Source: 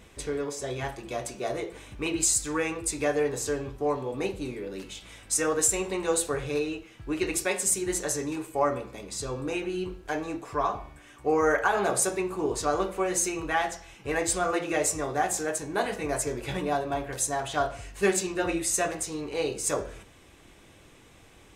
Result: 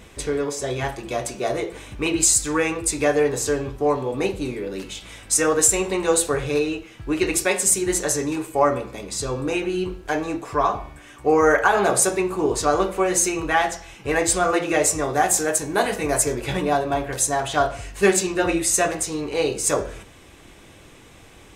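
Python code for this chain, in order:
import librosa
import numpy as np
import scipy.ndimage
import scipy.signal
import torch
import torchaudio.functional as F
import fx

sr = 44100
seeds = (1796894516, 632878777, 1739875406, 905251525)

y = fx.high_shelf(x, sr, hz=8300.0, db=8.0, at=(15.13, 16.35))
y = F.gain(torch.from_numpy(y), 7.0).numpy()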